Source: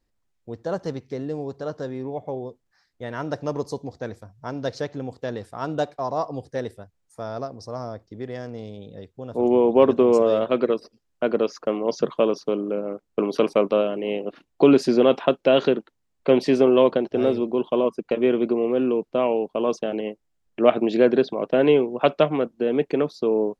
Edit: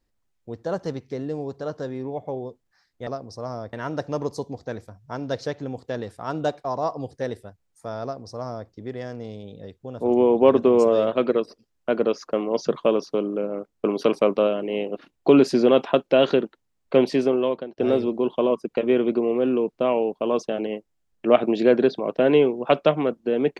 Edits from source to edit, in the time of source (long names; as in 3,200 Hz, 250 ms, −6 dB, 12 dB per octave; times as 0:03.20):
0:07.37–0:08.03: duplicate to 0:03.07
0:16.31–0:17.12: fade out, to −18.5 dB